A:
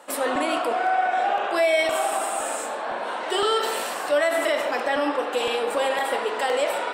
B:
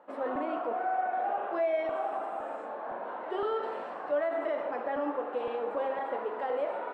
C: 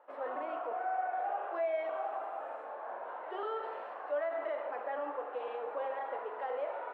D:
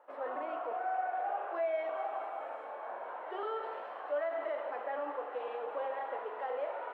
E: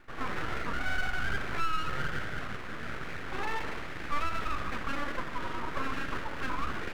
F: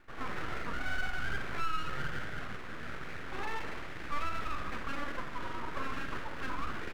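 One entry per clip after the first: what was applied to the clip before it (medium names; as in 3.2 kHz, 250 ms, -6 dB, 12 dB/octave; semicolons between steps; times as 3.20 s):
low-pass 1.2 kHz 12 dB/octave; trim -7.5 dB
three-band isolator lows -23 dB, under 390 Hz, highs -12 dB, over 3.7 kHz; trim -3.5 dB
feedback echo behind a high-pass 211 ms, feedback 84%, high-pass 2.5 kHz, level -9 dB
full-wave rectifier; trim +7 dB
doubling 50 ms -11.5 dB; trim -4 dB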